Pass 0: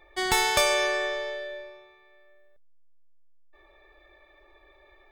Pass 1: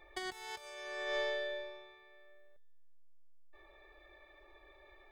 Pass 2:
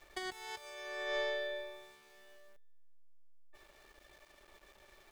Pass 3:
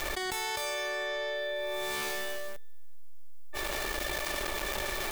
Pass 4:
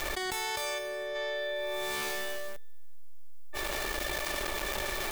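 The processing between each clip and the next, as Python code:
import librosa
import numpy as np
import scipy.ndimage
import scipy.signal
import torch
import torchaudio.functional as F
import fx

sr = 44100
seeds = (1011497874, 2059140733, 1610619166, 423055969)

y1 = fx.over_compress(x, sr, threshold_db=-31.0, ratio=-0.5)
y1 = fx.comb_fb(y1, sr, f0_hz=220.0, decay_s=1.4, harmonics='all', damping=0.0, mix_pct=30)
y1 = y1 * librosa.db_to_amplitude(-5.5)
y2 = np.where(np.abs(y1) >= 10.0 ** (-58.5 / 20.0), y1, 0.0)
y3 = fx.high_shelf(y2, sr, hz=8900.0, db=6.5)
y3 = fx.env_flatten(y3, sr, amount_pct=100)
y4 = fx.spec_box(y3, sr, start_s=0.78, length_s=0.37, low_hz=630.0, high_hz=8100.0, gain_db=-7)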